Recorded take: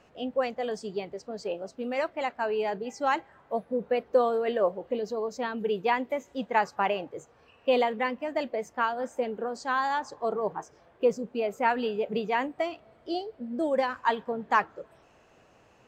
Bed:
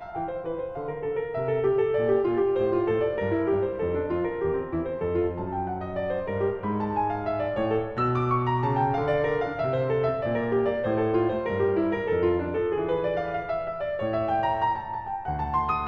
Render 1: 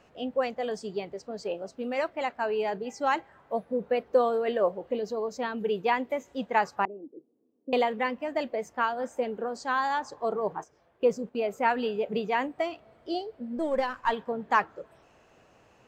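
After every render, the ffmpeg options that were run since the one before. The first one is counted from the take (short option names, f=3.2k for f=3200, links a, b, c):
-filter_complex "[0:a]asettb=1/sr,asplit=3[a][b][c];[a]atrim=end=6.854[d];[b]atrim=start=6.85:end=7.73,asetpts=PTS-STARTPTS,afade=t=in:d=0.004:c=qsin,afade=t=out:st=0.876:d=0.004:c=qsin,asuperpass=centerf=290:order=4:qfactor=2.2[e];[c]atrim=start=7.726[f];[d][e]acrossfade=d=0.004:c1=hsin:c2=qsin[g];[g][f]acrossfade=d=0.004:c1=qsin:c2=hsin,asettb=1/sr,asplit=3[h][i][j];[h]atrim=end=10.594[k];[i]atrim=start=10.59:end=11.51,asetpts=PTS-STARTPTS,afade=t=in:d=0.004:c=qsin,afade=t=out:st=0.916:d=0.004:c=qsin,agate=range=-7dB:threshold=-46dB:ratio=16:release=100:detection=peak[l];[j]atrim=start=11.506[m];[k][l]acrossfade=d=0.004:c1=hsin:c2=qsin[n];[n][m]acrossfade=d=0.004:c1=qsin:c2=hsin,asettb=1/sr,asplit=3[o][p][q];[o]atrim=end=13.574[r];[p]atrim=start=13.57:end=14.13,asetpts=PTS-STARTPTS,afade=t=in:d=0.004:c=qsin,afade=t=out:st=0.556:d=0.004:c=qsin,aeval=exprs='if(lt(val(0),0),0.708*val(0),val(0))':c=same[s];[q]atrim=start=14.126[t];[r][s]acrossfade=d=0.004:c1=hsin:c2=qsin[u];[u][t]acrossfade=d=0.004:c1=qsin:c2=hsin"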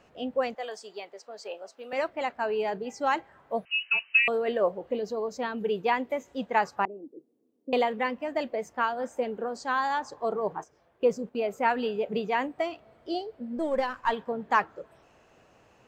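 -filter_complex "[0:a]asettb=1/sr,asplit=3[a][b][c];[a]atrim=end=0.554[d];[b]atrim=start=0.55:end=1.93,asetpts=PTS-STARTPTS,afade=t=in:d=0.004:c=qsin,afade=t=out:st=1.376:d=0.004:c=qsin,highpass=650[e];[c]atrim=start=1.926[f];[d][e]acrossfade=d=0.004:c1=hsin:c2=qsin[g];[g][f]acrossfade=d=0.004:c1=qsin:c2=hsin,asettb=1/sr,asplit=3[h][i][j];[h]atrim=end=3.654[k];[i]atrim=start=3.65:end=4.28,asetpts=PTS-STARTPTS,afade=t=in:d=0.004:c=qsin,afade=t=out:st=0.626:d=0.004:c=qsin,lowpass=f=2.6k:t=q:w=0.5098,lowpass=f=2.6k:t=q:w=0.6013,lowpass=f=2.6k:t=q:w=0.9,lowpass=f=2.6k:t=q:w=2.563,afreqshift=-3100[l];[j]atrim=start=4.276[m];[k][l]acrossfade=d=0.004:c1=hsin:c2=qsin[n];[n][m]acrossfade=d=0.004:c1=qsin:c2=hsin"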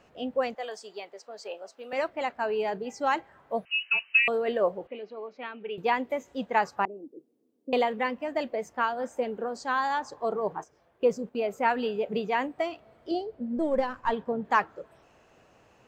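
-filter_complex "[0:a]asettb=1/sr,asplit=3[a][b][c];[a]atrim=end=4.874[d];[b]atrim=start=4.87:end=5.78,asetpts=PTS-STARTPTS,afade=t=in:d=0.004:c=qsin,afade=t=out:st=0.906:d=0.004:c=qsin,highpass=430,equalizer=f=490:t=q:w=4:g=-8,equalizer=f=700:t=q:w=4:g=-6,equalizer=f=1k:t=q:w=4:g=-8,equalizer=f=1.7k:t=q:w=4:g=-6,equalizer=f=2.4k:t=q:w=4:g=6,lowpass=f=3k:w=0.5412,lowpass=f=3k:w=1.3066[e];[c]atrim=start=5.776[f];[d][e]acrossfade=d=0.004:c1=hsin:c2=qsin[g];[g][f]acrossfade=d=0.004:c1=qsin:c2=hsin,asettb=1/sr,asplit=3[h][i][j];[h]atrim=end=13.114[k];[i]atrim=start=13.11:end=14.45,asetpts=PTS-STARTPTS,afade=t=in:d=0.004:c=qsin,afade=t=out:st=1.336:d=0.004:c=qsin,tiltshelf=f=710:g=4.5[l];[j]atrim=start=14.446[m];[k][l]acrossfade=d=0.004:c1=hsin:c2=qsin[n];[n][m]acrossfade=d=0.004:c1=qsin:c2=hsin"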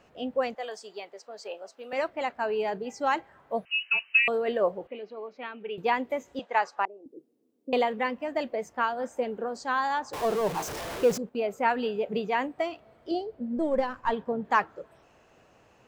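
-filter_complex "[0:a]asettb=1/sr,asplit=3[a][b][c];[a]atrim=end=6.394[d];[b]atrim=start=6.39:end=7.06,asetpts=PTS-STARTPTS,afade=t=in:d=0.004:c=qsin,afade=t=out:st=0.666:d=0.004:c=qsin,highpass=510,lowpass=7.3k[e];[c]atrim=start=7.056[f];[d][e]acrossfade=d=0.004:c1=hsin:c2=qsin[g];[g][f]acrossfade=d=0.004:c1=qsin:c2=hsin,asettb=1/sr,asplit=3[h][i][j];[h]atrim=end=10.134[k];[i]atrim=start=10.13:end=11.18,asetpts=PTS-STARTPTS,afade=t=in:d=0.004:c=qsin,afade=t=out:st=1.046:d=0.004:c=qsin,aeval=exprs='val(0)+0.5*0.0316*sgn(val(0))':c=same[l];[j]atrim=start=11.176[m];[k][l]acrossfade=d=0.004:c1=hsin:c2=qsin[n];[n][m]acrossfade=d=0.004:c1=qsin:c2=hsin"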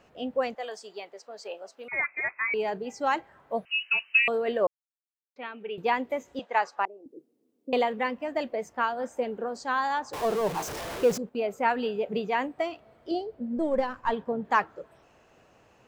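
-filter_complex "[0:a]asettb=1/sr,asplit=3[a][b][c];[a]atrim=end=1.884[d];[b]atrim=start=1.88:end=2.54,asetpts=PTS-STARTPTS,afade=t=in:d=0.004:c=qsin,afade=t=out:st=0.656:d=0.004:c=qsin,lowpass=f=2.3k:t=q:w=0.5098,lowpass=f=2.3k:t=q:w=0.6013,lowpass=f=2.3k:t=q:w=0.9,lowpass=f=2.3k:t=q:w=2.563,afreqshift=-2700[e];[c]atrim=start=2.536[f];[d][e]acrossfade=d=0.004:c1=hsin:c2=qsin[g];[g][f]acrossfade=d=0.004:c1=qsin:c2=hsin,asplit=3[h][i][j];[h]atrim=end=4.67,asetpts=PTS-STARTPTS,afade=t=out:st=4.666:d=0.004:c=hsin[k];[i]atrim=start=4.67:end=5.36,asetpts=PTS-STARTPTS,volume=0[l];[j]atrim=start=5.36,asetpts=PTS-STARTPTS,afade=t=in:d=0.004:c=hsin[m];[k][l][m]concat=n=3:v=0:a=1"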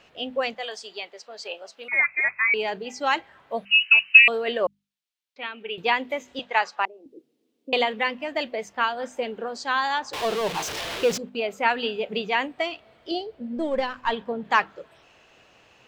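-af "equalizer=f=3.3k:t=o:w=1.8:g=12,bandreject=f=50:t=h:w=6,bandreject=f=100:t=h:w=6,bandreject=f=150:t=h:w=6,bandreject=f=200:t=h:w=6,bandreject=f=250:t=h:w=6"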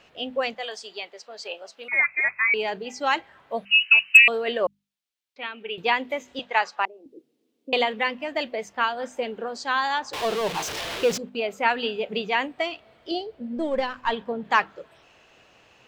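-af "asoftclip=type=hard:threshold=-4.5dB"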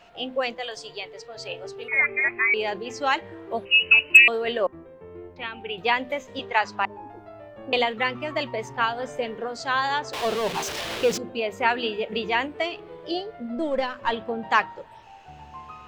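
-filter_complex "[1:a]volume=-16dB[a];[0:a][a]amix=inputs=2:normalize=0"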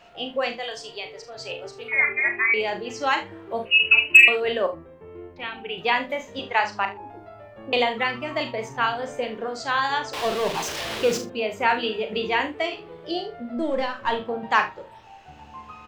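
-filter_complex "[0:a]asplit=2[a][b];[b]adelay=50,volume=-13.5dB[c];[a][c]amix=inputs=2:normalize=0,aecho=1:1:37|72:0.376|0.178"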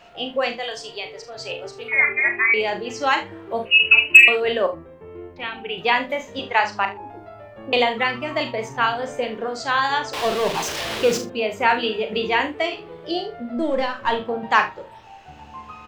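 -af "volume=3dB,alimiter=limit=-1dB:level=0:latency=1"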